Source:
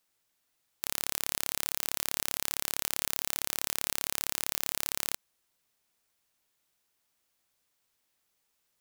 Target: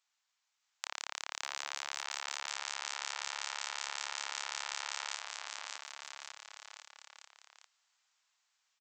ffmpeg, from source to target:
-af "dynaudnorm=f=290:g=9:m=5dB,aresample=16000,aeval=exprs='abs(val(0))':c=same,aresample=44100,acompressor=threshold=-40dB:ratio=2,highpass=f=810:w=0.5412,highpass=f=810:w=1.3066,aecho=1:1:610|1159|1653|2098|2498:0.631|0.398|0.251|0.158|0.1,volume=3dB"

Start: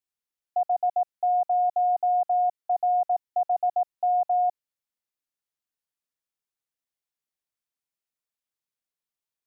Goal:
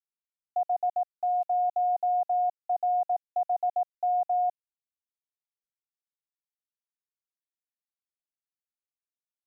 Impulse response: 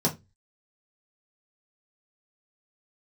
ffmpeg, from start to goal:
-filter_complex "[0:a]asplit=3[a][b][c];[a]afade=t=out:st=0.9:d=0.02[d];[b]highpass=f=580:w=0.5412,highpass=f=580:w=1.3066,afade=t=in:st=0.9:d=0.02,afade=t=out:st=1.42:d=0.02[e];[c]afade=t=in:st=1.42:d=0.02[f];[d][e][f]amix=inputs=3:normalize=0,aeval=exprs='val(0)*gte(abs(val(0)),0.00282)':c=same,volume=-3dB"

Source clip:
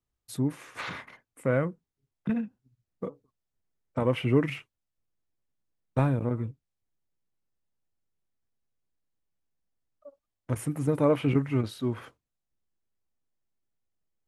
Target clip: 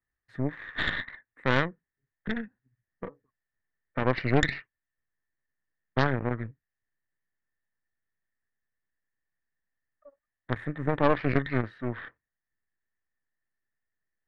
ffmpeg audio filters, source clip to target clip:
-af "lowpass=f=1.8k:t=q:w=14,aeval=exprs='0.422*(cos(1*acos(clip(val(0)/0.422,-1,1)))-cos(1*PI/2))+0.188*(cos(4*acos(clip(val(0)/0.422,-1,1)))-cos(4*PI/2))':c=same,volume=-5.5dB"

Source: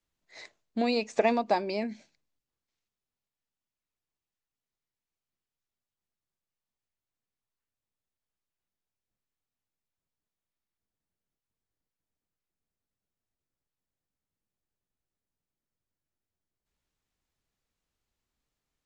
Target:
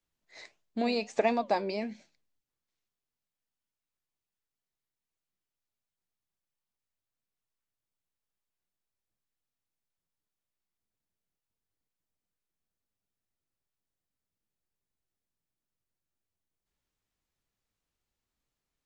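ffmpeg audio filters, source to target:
-af "flanger=delay=5.3:depth=5:regen=83:speed=1.5:shape=sinusoidal,volume=2.5dB"

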